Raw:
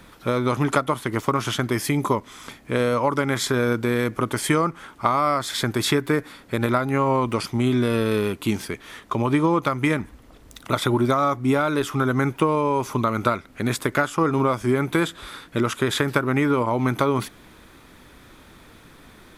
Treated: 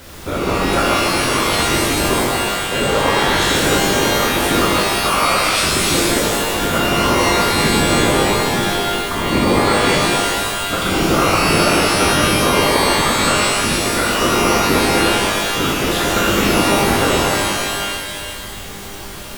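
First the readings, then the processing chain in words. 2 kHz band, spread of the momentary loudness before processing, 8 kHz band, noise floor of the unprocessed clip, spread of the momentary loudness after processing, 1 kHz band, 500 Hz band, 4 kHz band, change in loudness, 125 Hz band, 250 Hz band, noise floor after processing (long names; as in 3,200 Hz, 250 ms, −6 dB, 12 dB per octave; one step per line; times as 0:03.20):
+11.0 dB, 6 LU, +15.5 dB, −49 dBFS, 5 LU, +8.0 dB, +6.0 dB, +15.0 dB, +7.5 dB, +3.0 dB, +4.0 dB, −30 dBFS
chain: random phases in short frames
background noise pink −38 dBFS
reverb with rising layers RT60 2 s, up +12 semitones, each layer −2 dB, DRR −5.5 dB
level −3 dB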